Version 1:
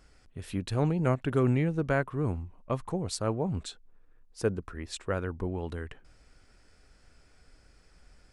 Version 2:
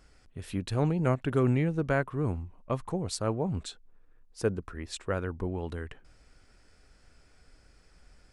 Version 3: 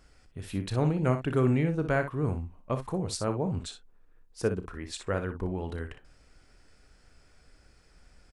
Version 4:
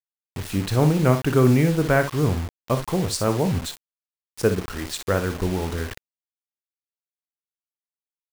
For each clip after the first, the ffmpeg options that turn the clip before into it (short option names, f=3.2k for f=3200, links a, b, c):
-af anull
-af "aecho=1:1:32|60:0.224|0.316"
-af "acrusher=bits=6:mix=0:aa=0.000001,volume=8dB"